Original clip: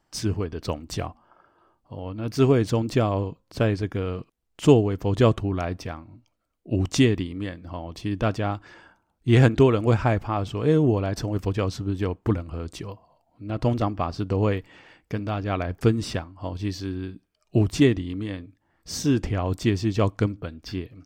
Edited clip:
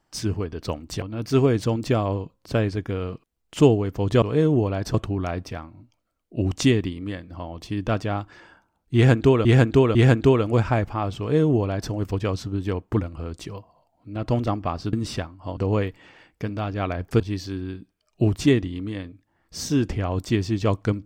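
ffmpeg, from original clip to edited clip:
-filter_complex "[0:a]asplit=9[a][b][c][d][e][f][g][h][i];[a]atrim=end=1.022[j];[b]atrim=start=2.078:end=5.282[k];[c]atrim=start=10.528:end=11.252[l];[d]atrim=start=5.278:end=9.792[m];[e]atrim=start=9.288:end=9.792[n];[f]atrim=start=9.288:end=14.272[o];[g]atrim=start=15.898:end=16.542[p];[h]atrim=start=14.268:end=15.902[q];[i]atrim=start=16.538[r];[j][k]acrossfade=d=0.004:c1=hsin:c2=hsin[s];[s][l]acrossfade=d=0.004:c1=hsin:c2=hsin[t];[t][m]acrossfade=d=0.004:c1=hsin:c2=hsin[u];[u][n]acrossfade=d=0.004:c1=hsin:c2=hsin[v];[v][o]acrossfade=d=0.004:c1=hsin:c2=hsin[w];[w][p]acrossfade=d=0.004:c1=hsin:c2=hsin[x];[x][q]acrossfade=d=0.004:c1=hsin:c2=hsin[y];[y][r]acrossfade=d=0.004:c1=hsin:c2=hsin"

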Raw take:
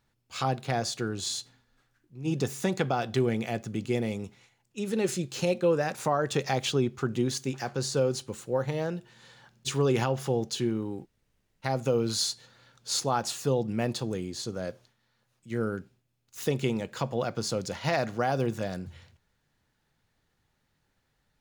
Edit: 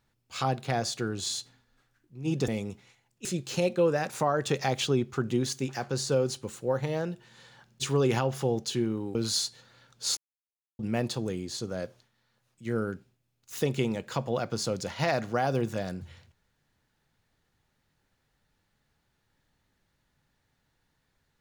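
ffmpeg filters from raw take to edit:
-filter_complex "[0:a]asplit=6[a][b][c][d][e][f];[a]atrim=end=2.482[g];[b]atrim=start=4.018:end=4.792[h];[c]atrim=start=5.098:end=11.002[i];[d]atrim=start=11.998:end=13.02,asetpts=PTS-STARTPTS,afade=t=out:st=1.018:d=0.004:c=hsin[j];[e]atrim=start=13.02:end=13.64,asetpts=PTS-STARTPTS,volume=0[k];[f]atrim=start=13.64,asetpts=PTS-STARTPTS,afade=t=in:d=0.004:c=hsin[l];[g][h]acrossfade=d=0.004:c1=hsin:c2=hsin[m];[m][i]acrossfade=d=0.004:c1=hsin:c2=hsin[n];[j][k][l]concat=n=3:v=0:a=1[o];[n][o]acrossfade=d=0.004:c1=hsin:c2=hsin"

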